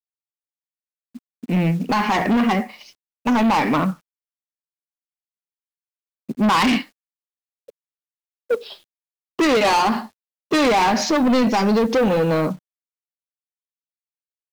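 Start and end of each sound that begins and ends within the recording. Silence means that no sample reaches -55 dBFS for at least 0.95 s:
1.15–4.01 s
6.29–12.59 s

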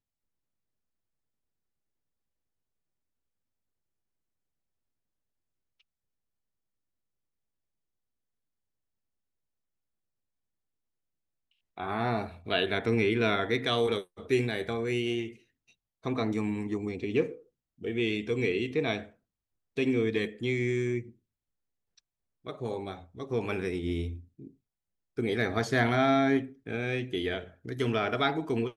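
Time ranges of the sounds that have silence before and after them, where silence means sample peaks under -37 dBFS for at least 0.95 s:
11.78–21.01 s

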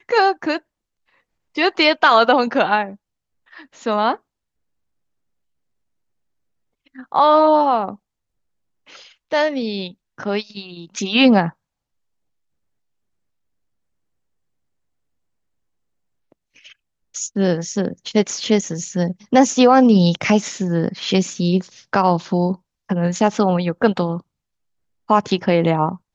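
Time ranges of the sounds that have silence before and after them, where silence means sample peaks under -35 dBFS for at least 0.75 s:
1.56–4.16 s
6.96–7.95 s
8.89–11.50 s
16.66–24.20 s

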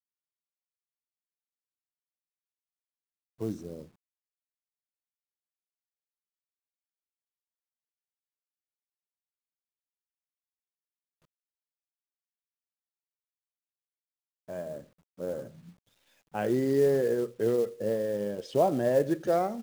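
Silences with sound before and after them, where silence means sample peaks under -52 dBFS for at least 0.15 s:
3.89–14.49 s
14.87–15.18 s
15.73–16.34 s

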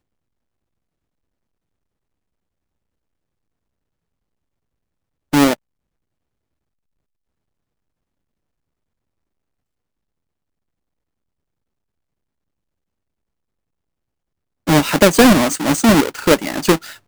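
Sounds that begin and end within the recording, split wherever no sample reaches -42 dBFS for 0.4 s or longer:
5.33–5.55 s

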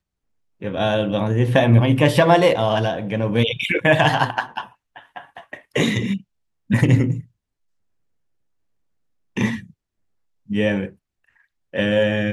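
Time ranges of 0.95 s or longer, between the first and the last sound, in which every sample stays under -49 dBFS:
7.27–9.36 s

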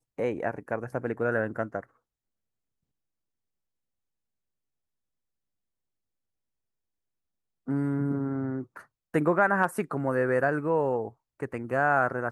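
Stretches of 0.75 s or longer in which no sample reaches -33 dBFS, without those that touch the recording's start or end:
1.80–7.68 s

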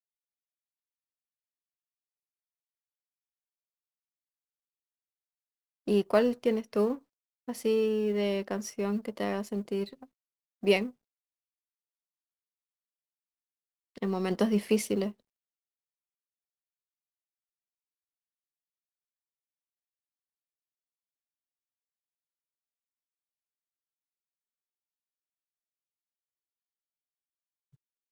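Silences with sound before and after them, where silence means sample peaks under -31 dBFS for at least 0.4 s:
6.95–7.49 s
9.84–10.63 s
10.86–14.02 s

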